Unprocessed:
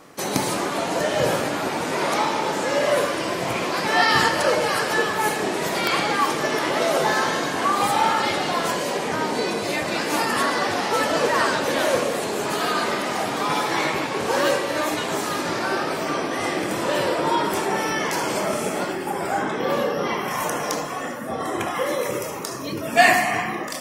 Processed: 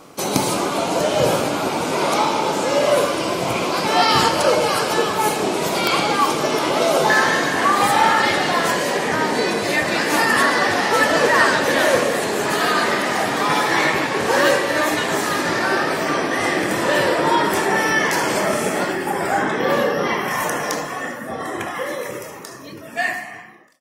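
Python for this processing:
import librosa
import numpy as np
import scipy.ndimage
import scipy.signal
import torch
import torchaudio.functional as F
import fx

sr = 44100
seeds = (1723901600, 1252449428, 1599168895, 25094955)

y = fx.fade_out_tail(x, sr, length_s=4.02)
y = fx.peak_eq(y, sr, hz=1800.0, db=fx.steps((0.0, -11.0), (7.1, 7.0)), octaves=0.25)
y = y * 10.0 ** (4.0 / 20.0)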